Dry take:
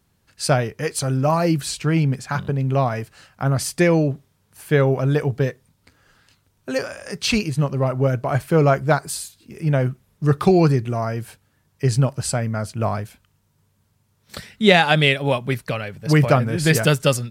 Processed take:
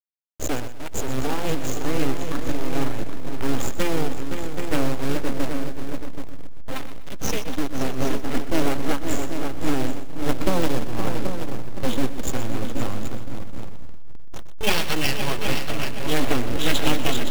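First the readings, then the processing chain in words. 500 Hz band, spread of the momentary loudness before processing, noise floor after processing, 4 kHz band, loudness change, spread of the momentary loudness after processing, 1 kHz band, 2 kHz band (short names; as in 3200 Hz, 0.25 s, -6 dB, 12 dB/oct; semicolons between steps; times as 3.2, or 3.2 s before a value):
-7.5 dB, 11 LU, -25 dBFS, -3.0 dB, -7.0 dB, 12 LU, -6.0 dB, -6.5 dB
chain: nonlinear frequency compression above 2700 Hz 4:1; gate -40 dBFS, range -11 dB; bell 750 Hz -9 dB 2.6 oct; in parallel at +1.5 dB: compressor 16:1, threshold -32 dBFS, peak gain reduction 20.5 dB; on the sum: full-wave rectifier; companded quantiser 4-bit; on a send: multi-head echo 0.259 s, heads second and third, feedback 53%, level -7 dB; on the sum: backlash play -22.5 dBFS; lo-fi delay 0.124 s, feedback 35%, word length 7-bit, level -13 dB; gain -1.5 dB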